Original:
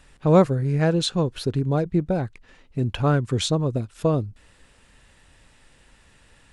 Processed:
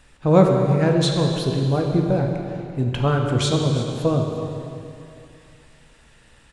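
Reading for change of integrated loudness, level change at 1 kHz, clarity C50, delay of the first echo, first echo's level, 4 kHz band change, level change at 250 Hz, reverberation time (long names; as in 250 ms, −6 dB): +2.5 dB, +2.5 dB, 2.5 dB, 343 ms, −16.0 dB, +2.5 dB, +2.5 dB, 2.6 s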